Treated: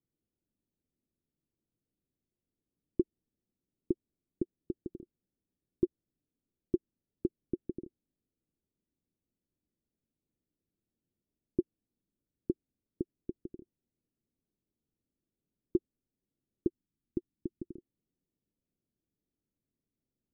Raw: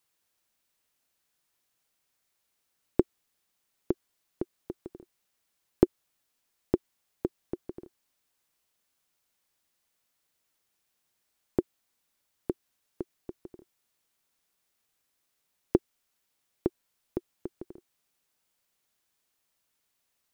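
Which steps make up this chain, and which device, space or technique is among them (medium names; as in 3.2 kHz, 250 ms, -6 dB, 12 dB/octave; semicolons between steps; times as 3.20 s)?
overdriven synthesiser ladder filter (saturation -21 dBFS, distortion -5 dB; four-pole ladder low-pass 390 Hz, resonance 25%); 16.67–17.75 s: high-order bell 710 Hz -9 dB; trim +9.5 dB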